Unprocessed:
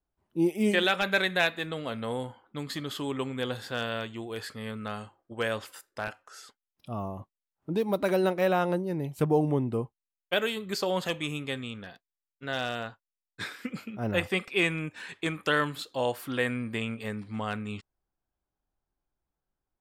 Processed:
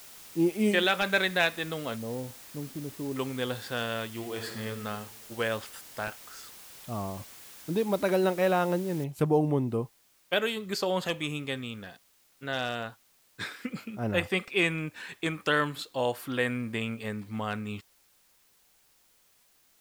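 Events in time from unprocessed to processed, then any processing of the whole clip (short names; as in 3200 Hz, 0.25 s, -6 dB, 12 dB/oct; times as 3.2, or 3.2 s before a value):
1.96–3.16 Gaussian blur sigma 12 samples
4.07–4.65 reverb throw, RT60 1.5 s, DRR 3 dB
9.04 noise floor step -49 dB -65 dB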